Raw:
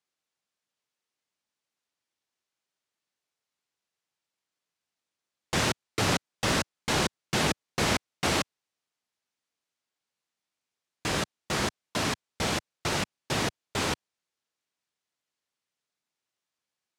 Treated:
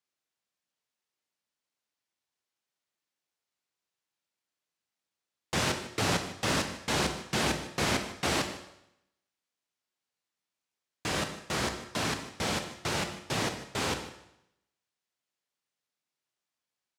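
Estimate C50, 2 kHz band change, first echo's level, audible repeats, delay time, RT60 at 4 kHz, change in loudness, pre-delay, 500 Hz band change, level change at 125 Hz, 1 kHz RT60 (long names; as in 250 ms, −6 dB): 8.0 dB, −2.0 dB, −16.5 dB, 1, 152 ms, 0.80 s, −2.0 dB, 20 ms, −2.0 dB, −2.5 dB, 0.80 s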